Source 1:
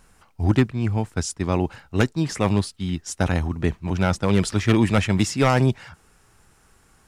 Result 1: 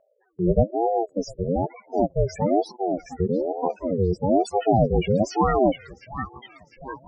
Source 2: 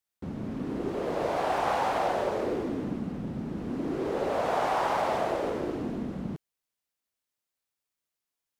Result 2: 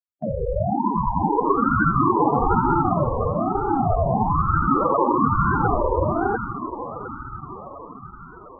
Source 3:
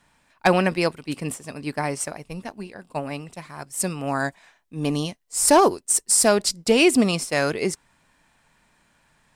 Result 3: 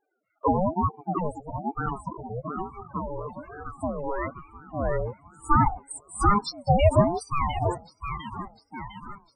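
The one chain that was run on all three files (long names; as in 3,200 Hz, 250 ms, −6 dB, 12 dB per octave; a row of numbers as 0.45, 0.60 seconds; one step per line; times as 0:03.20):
spectral peaks only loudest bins 4
low-pass that shuts in the quiet parts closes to 1,900 Hz, open at −18.5 dBFS
low-shelf EQ 61 Hz −11.5 dB
in parallel at −3 dB: downward compressor, threshold −33 dBFS
on the sum: noise gate −52 dBFS, range −7 dB
on a send: delay with a band-pass on its return 703 ms, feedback 57%, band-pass 1,300 Hz, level −3 dB
on the sum: ring modulator whose carrier an LFO sweeps 440 Hz, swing 40%, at 1.1 Hz
normalise the peak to −6 dBFS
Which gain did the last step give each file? +4.5, +13.0, +1.5 decibels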